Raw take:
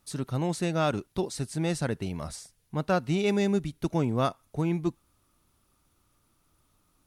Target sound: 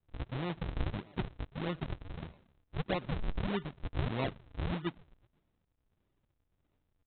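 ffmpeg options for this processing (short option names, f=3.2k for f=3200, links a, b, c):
-filter_complex "[0:a]asplit=2[a][b];[b]adelay=123,lowpass=f=2.3k:p=1,volume=-21dB,asplit=2[c][d];[d]adelay=123,lowpass=f=2.3k:p=1,volume=0.51,asplit=2[e][f];[f]adelay=123,lowpass=f=2.3k:p=1,volume=0.51,asplit=2[g][h];[h]adelay=123,lowpass=f=2.3k:p=1,volume=0.51[i];[a][c][e][g][i]amix=inputs=5:normalize=0,aresample=8000,acrusher=samples=24:mix=1:aa=0.000001:lfo=1:lforange=38.4:lforate=1.6,aresample=44100,volume=-8dB"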